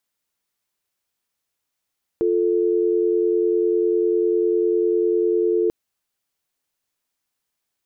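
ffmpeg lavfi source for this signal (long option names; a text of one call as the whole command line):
ffmpeg -f lavfi -i "aevalsrc='0.112*(sin(2*PI*350*t)+sin(2*PI*440*t))':duration=3.49:sample_rate=44100" out.wav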